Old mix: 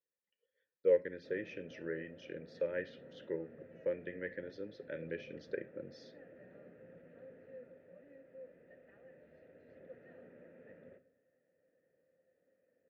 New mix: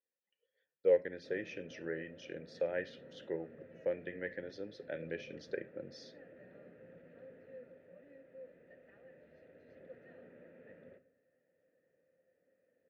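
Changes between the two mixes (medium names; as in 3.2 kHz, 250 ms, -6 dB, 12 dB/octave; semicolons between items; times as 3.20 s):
speech: remove Butterworth band-stop 720 Hz, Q 2.7; master: add peaking EQ 11 kHz +11.5 dB 1.9 oct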